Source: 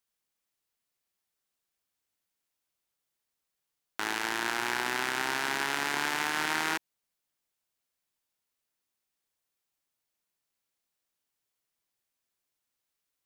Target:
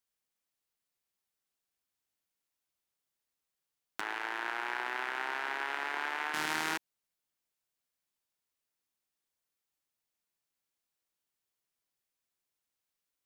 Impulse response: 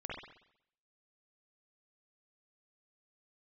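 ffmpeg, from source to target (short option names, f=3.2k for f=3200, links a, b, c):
-filter_complex "[0:a]asettb=1/sr,asplit=3[a][b][c];[a]atrim=end=4.014[d];[b]atrim=start=4.01:end=6.34,asetpts=PTS-STARTPTS,afade=t=in:d=0.004:c=qsin,afade=t=out:st=2.326:d=0.004:c=qsin,acrossover=split=360 3000:gain=0.0794 1 0.158[e][f][g];[e][f][g]amix=inputs=3:normalize=0[h];[c]atrim=start=6.336[i];[d][h]acrossfade=d=0.004:c1=hsin:c2=qsin[j];[j][i]acrossfade=d=0.004:c1=qsin:c2=hsin,volume=-3.5dB"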